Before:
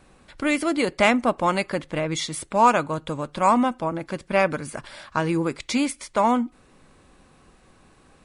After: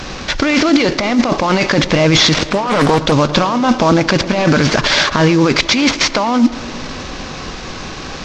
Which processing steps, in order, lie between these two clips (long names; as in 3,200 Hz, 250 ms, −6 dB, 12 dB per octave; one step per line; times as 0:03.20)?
variable-slope delta modulation 32 kbit/s
high-shelf EQ 2,400 Hz +7 dB
compressor whose output falls as the input rises −30 dBFS, ratio −1
tape delay 112 ms, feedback 89%, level −19 dB, low-pass 2,400 Hz
boost into a limiter +21 dB
0:02.53–0:03.12: highs frequency-modulated by the lows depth 0.72 ms
level −1 dB